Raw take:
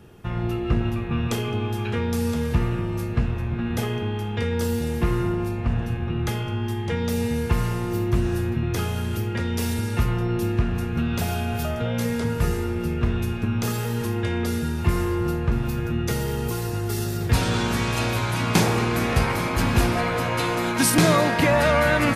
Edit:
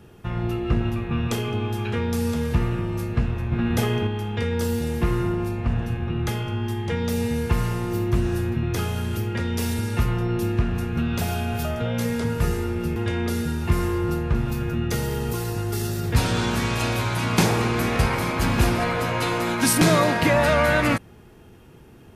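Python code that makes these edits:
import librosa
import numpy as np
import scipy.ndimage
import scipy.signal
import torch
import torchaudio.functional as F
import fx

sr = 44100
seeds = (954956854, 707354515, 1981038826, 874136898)

y = fx.edit(x, sr, fx.clip_gain(start_s=3.52, length_s=0.55, db=3.5),
    fx.cut(start_s=12.96, length_s=1.17), tone=tone)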